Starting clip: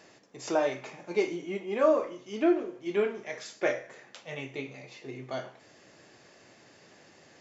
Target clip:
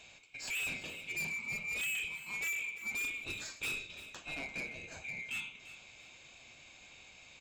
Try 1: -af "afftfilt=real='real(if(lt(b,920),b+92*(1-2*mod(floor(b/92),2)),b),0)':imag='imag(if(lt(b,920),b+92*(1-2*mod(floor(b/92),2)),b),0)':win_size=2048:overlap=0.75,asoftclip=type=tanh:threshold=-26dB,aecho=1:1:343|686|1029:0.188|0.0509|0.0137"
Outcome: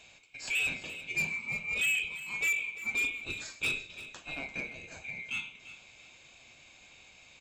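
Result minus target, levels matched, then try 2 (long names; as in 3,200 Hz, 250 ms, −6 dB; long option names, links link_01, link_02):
soft clipping: distortion −6 dB
-af "afftfilt=real='real(if(lt(b,920),b+92*(1-2*mod(floor(b/92),2)),b),0)':imag='imag(if(lt(b,920),b+92*(1-2*mod(floor(b/92),2)),b),0)':win_size=2048:overlap=0.75,asoftclip=type=tanh:threshold=-35dB,aecho=1:1:343|686|1029:0.188|0.0509|0.0137"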